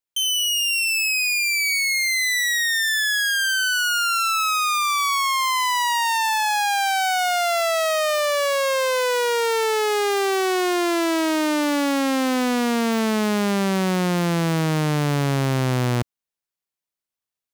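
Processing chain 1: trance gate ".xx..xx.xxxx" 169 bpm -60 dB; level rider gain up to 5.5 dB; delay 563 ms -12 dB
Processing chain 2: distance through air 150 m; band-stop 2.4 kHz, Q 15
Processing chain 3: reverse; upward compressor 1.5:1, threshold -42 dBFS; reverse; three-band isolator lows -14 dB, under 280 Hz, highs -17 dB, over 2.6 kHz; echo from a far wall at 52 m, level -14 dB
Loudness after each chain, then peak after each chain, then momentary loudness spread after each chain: -16.0 LUFS, -22.0 LUFS, -23.0 LUFS; -8.5 dBFS, -16.0 dBFS, -12.5 dBFS; 4 LU, 1 LU, 5 LU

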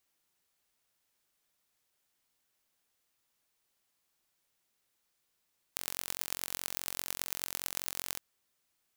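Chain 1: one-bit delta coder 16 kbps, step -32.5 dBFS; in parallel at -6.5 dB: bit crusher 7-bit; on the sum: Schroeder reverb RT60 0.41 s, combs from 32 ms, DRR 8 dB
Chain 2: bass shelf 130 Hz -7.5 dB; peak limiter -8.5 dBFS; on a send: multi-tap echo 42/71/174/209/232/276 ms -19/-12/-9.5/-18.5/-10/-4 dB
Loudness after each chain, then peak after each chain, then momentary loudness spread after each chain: -34.5 LUFS, -36.0 LUFS; -23.5 dBFS, -8.5 dBFS; 0 LU, 7 LU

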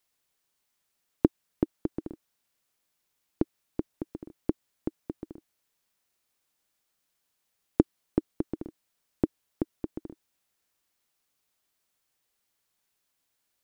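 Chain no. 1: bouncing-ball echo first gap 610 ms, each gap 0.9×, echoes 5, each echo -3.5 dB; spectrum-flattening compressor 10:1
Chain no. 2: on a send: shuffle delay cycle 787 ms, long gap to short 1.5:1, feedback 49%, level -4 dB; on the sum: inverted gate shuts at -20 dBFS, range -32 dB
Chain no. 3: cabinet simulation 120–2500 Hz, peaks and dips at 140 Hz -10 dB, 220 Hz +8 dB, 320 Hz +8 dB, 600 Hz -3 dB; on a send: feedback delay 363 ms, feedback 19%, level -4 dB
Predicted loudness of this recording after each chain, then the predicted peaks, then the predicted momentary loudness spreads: -39.0 LUFS, -42.5 LUFS, -28.0 LUFS; -4.5 dBFS, -8.0 dBFS, -2.0 dBFS; 14 LU, 17 LU, 14 LU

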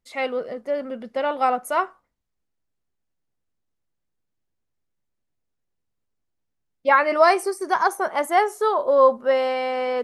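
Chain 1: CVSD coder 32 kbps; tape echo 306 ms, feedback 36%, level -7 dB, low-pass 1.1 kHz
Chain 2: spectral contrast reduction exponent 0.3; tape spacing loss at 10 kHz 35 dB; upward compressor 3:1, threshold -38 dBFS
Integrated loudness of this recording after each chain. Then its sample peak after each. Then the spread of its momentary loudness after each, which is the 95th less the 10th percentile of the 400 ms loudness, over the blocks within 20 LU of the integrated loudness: -21.5 LUFS, -26.5 LUFS; -4.5 dBFS, -5.5 dBFS; 11 LU, 11 LU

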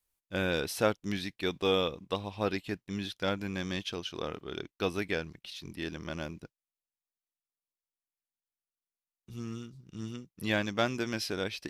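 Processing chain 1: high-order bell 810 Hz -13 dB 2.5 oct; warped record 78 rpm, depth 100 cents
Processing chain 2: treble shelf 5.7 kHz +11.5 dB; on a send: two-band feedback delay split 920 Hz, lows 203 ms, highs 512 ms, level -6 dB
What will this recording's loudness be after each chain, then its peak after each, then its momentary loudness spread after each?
-37.5 LUFS, -32.0 LUFS; -18.5 dBFS, -10.0 dBFS; 10 LU, 15 LU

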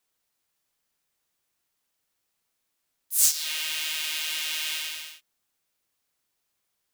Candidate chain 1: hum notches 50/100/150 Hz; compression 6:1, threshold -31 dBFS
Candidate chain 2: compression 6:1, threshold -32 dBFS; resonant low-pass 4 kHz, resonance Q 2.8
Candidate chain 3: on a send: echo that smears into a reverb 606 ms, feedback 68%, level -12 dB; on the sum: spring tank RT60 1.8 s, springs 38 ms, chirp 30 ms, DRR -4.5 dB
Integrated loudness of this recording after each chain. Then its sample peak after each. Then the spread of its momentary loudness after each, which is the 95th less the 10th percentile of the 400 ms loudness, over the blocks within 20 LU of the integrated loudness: -33.5 LUFS, -30.5 LUFS, -24.0 LUFS; -17.0 dBFS, -17.5 dBFS, -4.0 dBFS; 6 LU, 11 LU, 19 LU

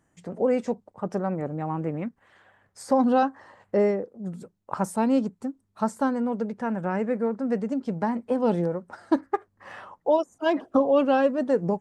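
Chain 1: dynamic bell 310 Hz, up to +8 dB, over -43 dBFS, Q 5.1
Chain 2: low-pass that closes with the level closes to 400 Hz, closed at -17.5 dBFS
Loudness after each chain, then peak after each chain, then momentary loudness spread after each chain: -24.5 LUFS, -28.0 LUFS; -6.5 dBFS, -10.5 dBFS; 14 LU, 12 LU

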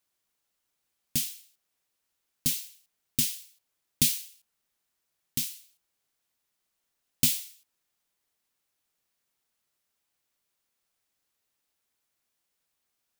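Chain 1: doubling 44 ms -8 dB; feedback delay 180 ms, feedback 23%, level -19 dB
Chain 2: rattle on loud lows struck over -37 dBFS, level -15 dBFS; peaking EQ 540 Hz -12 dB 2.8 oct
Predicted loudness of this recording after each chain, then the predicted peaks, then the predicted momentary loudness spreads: -28.0 LUFS, -28.5 LUFS; -6.5 dBFS, -7.5 dBFS; 17 LU, 21 LU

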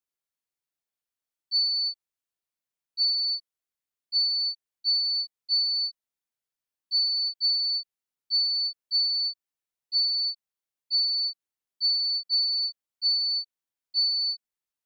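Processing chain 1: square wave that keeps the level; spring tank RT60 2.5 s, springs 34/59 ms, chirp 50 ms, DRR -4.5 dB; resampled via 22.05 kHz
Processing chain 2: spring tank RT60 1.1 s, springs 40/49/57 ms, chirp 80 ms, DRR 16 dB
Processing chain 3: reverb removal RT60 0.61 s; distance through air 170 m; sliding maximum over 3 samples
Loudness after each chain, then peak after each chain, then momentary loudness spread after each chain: -20.0 LUFS, -24.5 LUFS, -34.0 LUFS; -14.0 dBFS, -18.5 dBFS, -24.0 dBFS; 12 LU, 8 LU, 8 LU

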